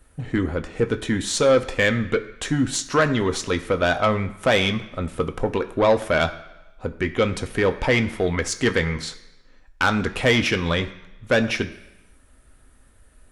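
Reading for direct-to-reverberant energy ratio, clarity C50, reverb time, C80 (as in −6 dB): 6.5 dB, 13.5 dB, 1.0 s, 15.5 dB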